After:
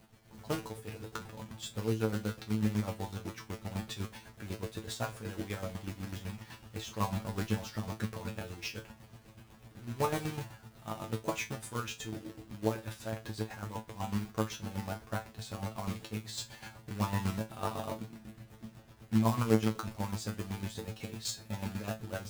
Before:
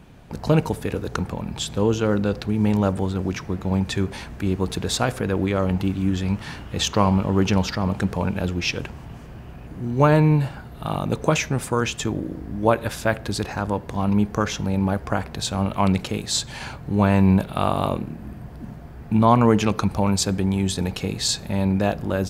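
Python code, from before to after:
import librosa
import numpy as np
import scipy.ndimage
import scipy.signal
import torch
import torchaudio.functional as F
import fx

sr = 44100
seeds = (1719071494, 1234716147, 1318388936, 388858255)

y = fx.chopper(x, sr, hz=8.0, depth_pct=65, duty_pct=40)
y = fx.quant_companded(y, sr, bits=4)
y = fx.comb_fb(y, sr, f0_hz=110.0, decay_s=0.19, harmonics='all', damping=0.0, mix_pct=100)
y = y * 10.0 ** (-4.5 / 20.0)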